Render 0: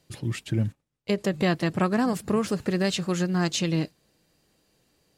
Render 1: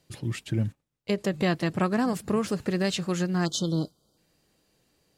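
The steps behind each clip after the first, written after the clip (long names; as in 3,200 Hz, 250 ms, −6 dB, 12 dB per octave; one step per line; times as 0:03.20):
time-frequency box erased 0:03.45–0:04.17, 1,500–3,000 Hz
level −1.5 dB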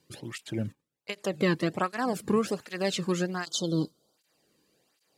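through-zero flanger with one copy inverted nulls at 1.3 Hz, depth 1.6 ms
level +2 dB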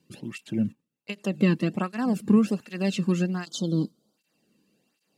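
hollow resonant body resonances 210/2,700 Hz, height 14 dB, ringing for 35 ms
level −4 dB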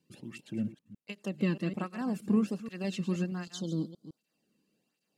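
delay that plays each chunk backwards 158 ms, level −12 dB
level −8 dB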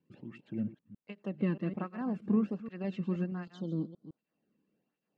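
low-pass filter 1,900 Hz 12 dB per octave
level −1.5 dB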